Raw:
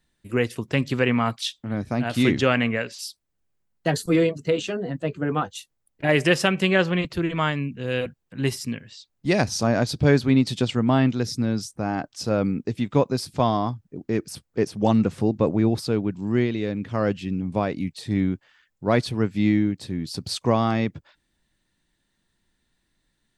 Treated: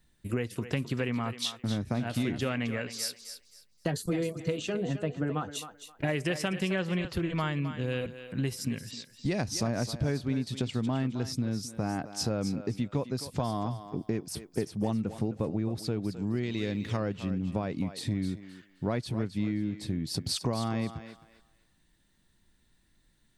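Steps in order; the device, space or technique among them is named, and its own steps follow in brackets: ASMR close-microphone chain (low shelf 210 Hz +6.5 dB; compressor 6:1, threshold -28 dBFS, peak gain reduction 17 dB; high shelf 9000 Hz +6 dB); thinning echo 0.263 s, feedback 25%, high-pass 390 Hz, level -10 dB; 16.43–16.97 high shelf 2300 Hz +11.5 dB

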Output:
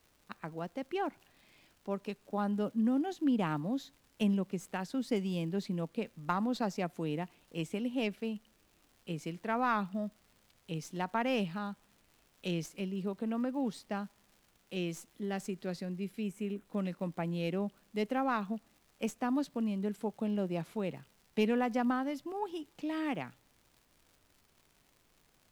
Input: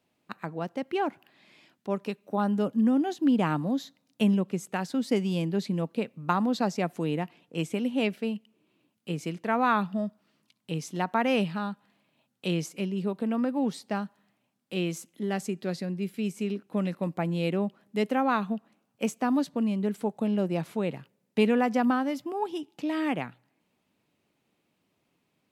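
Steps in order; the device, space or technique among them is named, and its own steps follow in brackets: record under a worn stylus (tracing distortion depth 0.029 ms; crackle 150/s -45 dBFS; pink noise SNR 35 dB); 16.23–16.65 bell 4700 Hz -11 dB 0.7 oct; gain -6.5 dB

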